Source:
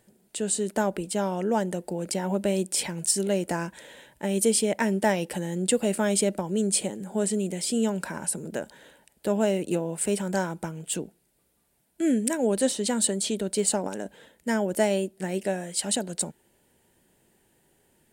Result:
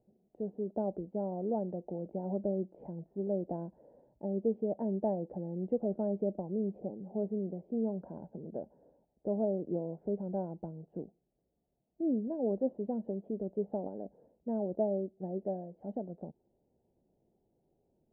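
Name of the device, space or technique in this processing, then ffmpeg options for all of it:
under water: -af "lowpass=f=620:w=0.5412,lowpass=f=620:w=1.3066,equalizer=f=740:t=o:w=0.49:g=7.5,volume=-8dB"

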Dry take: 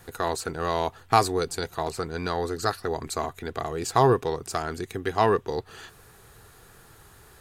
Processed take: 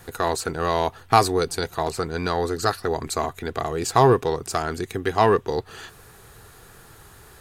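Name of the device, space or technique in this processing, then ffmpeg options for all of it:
parallel distortion: -filter_complex "[0:a]asplit=2[a][b];[b]asoftclip=type=hard:threshold=-20.5dB,volume=-13dB[c];[a][c]amix=inputs=2:normalize=0,asettb=1/sr,asplit=3[d][e][f];[d]atrim=end=0.614[g];[e]atrim=start=0.61:end=1.66,asetpts=PTS-STARTPTS,afade=t=in:d=0.004:c=qsin,afade=t=out:st=1.046:d=0.004:c=qsin,bandreject=f=7.3k:w=11[h];[f]atrim=start=1.656[i];[g][h]acrossfade=d=0.004:c1=hsin:c2=qsin[j];[j][i]acrossfade=d=0.004:c1=qsin:c2=hsin,volume=2.5dB"

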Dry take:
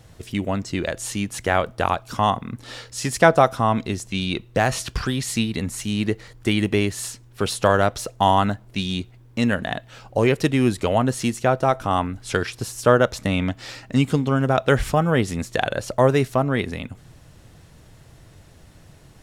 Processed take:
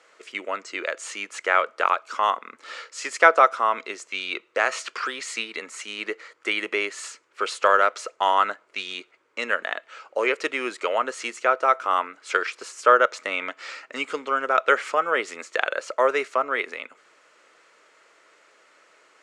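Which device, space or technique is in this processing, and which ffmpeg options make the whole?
phone speaker on a table: -af "highpass=f=440:w=0.5412,highpass=f=440:w=1.3066,equalizer=f=750:t=q:w=4:g=-8,equalizer=f=1.3k:t=q:w=4:g=9,equalizer=f=2.2k:t=q:w=4:g=6,equalizer=f=3.7k:t=q:w=4:g=-5,equalizer=f=5.5k:t=q:w=4:g=-5,lowpass=f=7.4k:w=0.5412,lowpass=f=7.4k:w=1.3066,volume=-1dB"

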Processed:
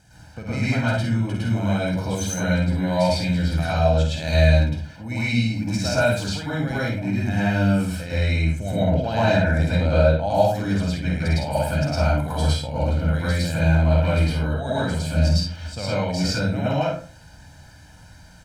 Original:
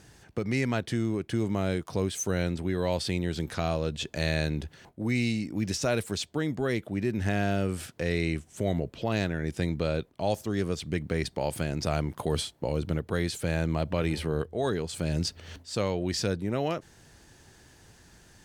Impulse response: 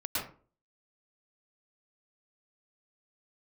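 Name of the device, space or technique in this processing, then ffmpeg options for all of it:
microphone above a desk: -filter_complex "[0:a]asettb=1/sr,asplit=3[a][b][c];[a]atrim=end=8.714[d];[b]atrim=start=8.71:end=10.28,asetpts=PTS-STARTPTS,afade=t=in:d=0.004:c=qsin,afade=t=out:st=1.566:d=0.004:c=qsin,equalizer=f=680:t=o:w=2.8:g=5.5[e];[c]atrim=start=10.276[f];[d][e]acrossfade=d=0.004:c1=hsin:c2=qsin[g];[g][f]acrossfade=d=0.004:c1=qsin:c2=hsin,aecho=1:1:1.3:0.71[h];[1:a]atrim=start_sample=2205[i];[h][i]afir=irnorm=-1:irlink=0,aecho=1:1:50|61:0.473|0.355,volume=-1.5dB"

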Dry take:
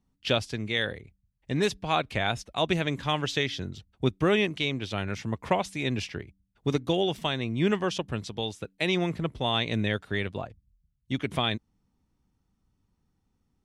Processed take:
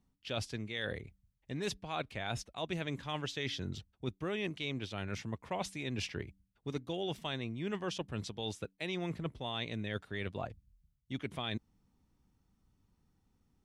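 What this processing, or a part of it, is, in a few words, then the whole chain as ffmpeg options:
compression on the reversed sound: -af "areverse,acompressor=threshold=-35dB:ratio=6,areverse"

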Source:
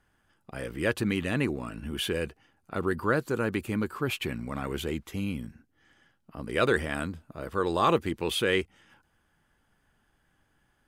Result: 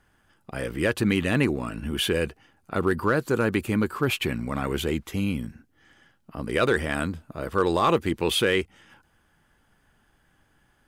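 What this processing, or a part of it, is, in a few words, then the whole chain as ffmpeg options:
limiter into clipper: -af "alimiter=limit=-16dB:level=0:latency=1:release=172,asoftclip=type=hard:threshold=-17.5dB,volume=5.5dB"

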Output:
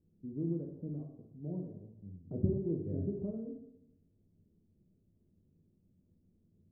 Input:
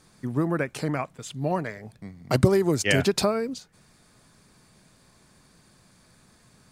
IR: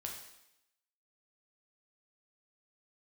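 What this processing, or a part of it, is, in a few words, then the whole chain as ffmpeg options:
next room: -filter_complex "[0:a]lowpass=f=390:w=0.5412,lowpass=f=390:w=1.3066[a];[1:a]atrim=start_sample=2205[b];[a][b]afir=irnorm=-1:irlink=0,volume=-8dB"

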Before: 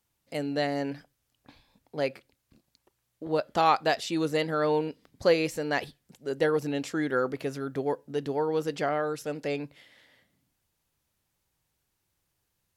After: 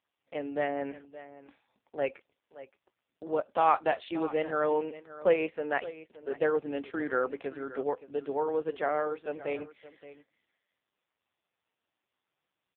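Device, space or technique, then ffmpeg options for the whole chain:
satellite phone: -af "deesser=0.7,highpass=350,lowpass=3.4k,aecho=1:1:571:0.158" -ar 8000 -c:a libopencore_amrnb -b:a 5150

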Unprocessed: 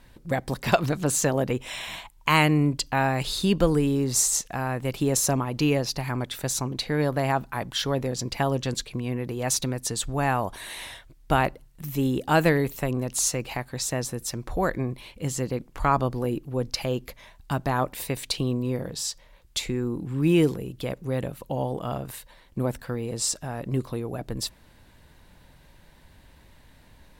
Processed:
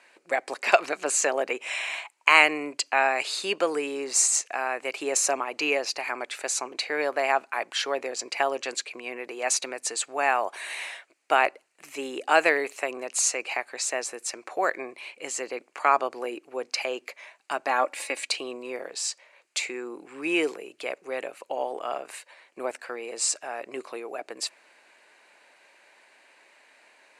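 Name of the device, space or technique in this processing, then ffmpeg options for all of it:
phone speaker on a table: -filter_complex "[0:a]highpass=f=440:w=0.5412,highpass=f=440:w=1.3066,equalizer=f=500:t=q:w=4:g=-5,equalizer=f=950:t=q:w=4:g=-4,equalizer=f=2.4k:t=q:w=4:g=7,equalizer=f=3.5k:t=q:w=4:g=-9,equalizer=f=5.5k:t=q:w=4:g=-5,lowpass=f=8.7k:w=0.5412,lowpass=f=8.7k:w=1.3066,asettb=1/sr,asplit=3[a][b][c];[a]atrim=end=17.674[d];[b]atrim=start=17.67:end=18.28,asetpts=PTS-STARTPTS,afade=t=in:d=0.004:c=qsin,afade=t=out:st=0.606:d=0.004:c=qsin,aecho=1:1:3.6:0.57,atrim=end_sample=26901[e];[c]atrim=start=18.276[f];[d][e]acrossfade=d=0.004:c1=hsin:c2=qsin[g];[g][f]acrossfade=d=0.004:c1=qsin:c2=hsin,volume=3.5dB"

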